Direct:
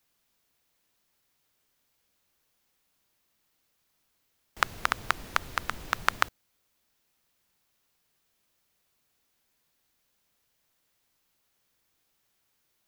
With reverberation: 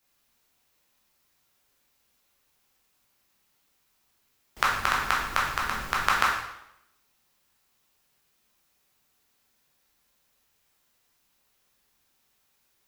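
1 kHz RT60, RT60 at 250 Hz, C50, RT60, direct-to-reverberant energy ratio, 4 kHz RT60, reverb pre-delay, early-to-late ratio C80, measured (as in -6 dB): 0.80 s, 0.75 s, 2.5 dB, 0.80 s, -4.5 dB, 0.75 s, 6 ms, 5.5 dB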